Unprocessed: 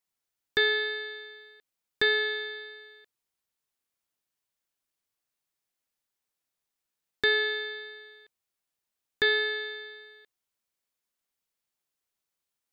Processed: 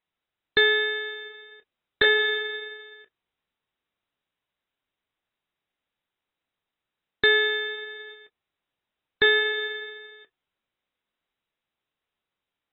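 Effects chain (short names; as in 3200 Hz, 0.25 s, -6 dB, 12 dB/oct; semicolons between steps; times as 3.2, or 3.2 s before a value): 7.5–8.14 upward compressor, threshold -40 dBFS; gain +5 dB; AAC 16 kbps 24000 Hz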